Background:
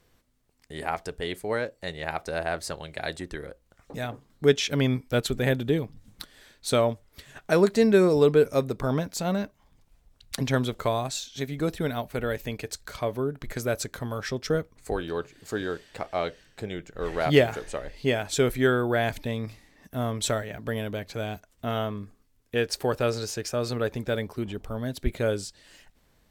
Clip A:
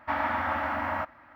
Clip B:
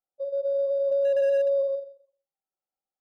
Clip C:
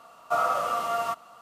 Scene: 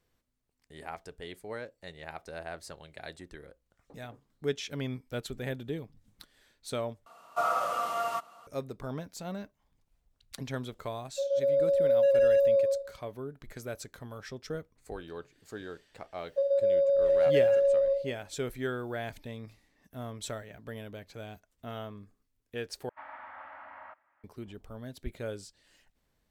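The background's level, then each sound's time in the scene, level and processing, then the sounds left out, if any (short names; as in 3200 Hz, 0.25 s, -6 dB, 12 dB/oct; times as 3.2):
background -11.5 dB
7.06 replace with C -3.5 dB + low shelf 150 Hz -6 dB
10.98 add B
16.18 add B -0.5 dB + three-band squash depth 70%
22.89 replace with A -17 dB + three-band isolator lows -17 dB, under 470 Hz, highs -17 dB, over 3400 Hz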